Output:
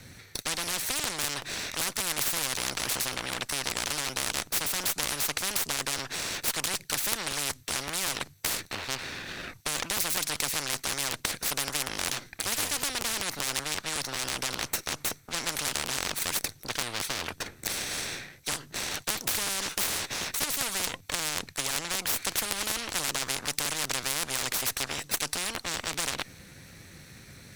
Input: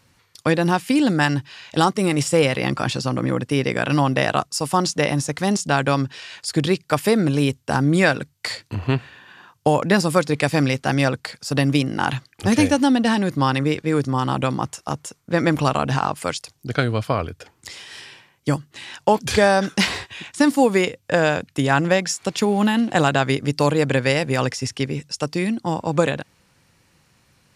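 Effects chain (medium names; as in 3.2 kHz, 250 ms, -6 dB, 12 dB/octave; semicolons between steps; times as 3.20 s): comb filter that takes the minimum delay 0.49 ms; crackling interface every 0.19 s, samples 512, repeat, from 0.65 s; spectrum-flattening compressor 10:1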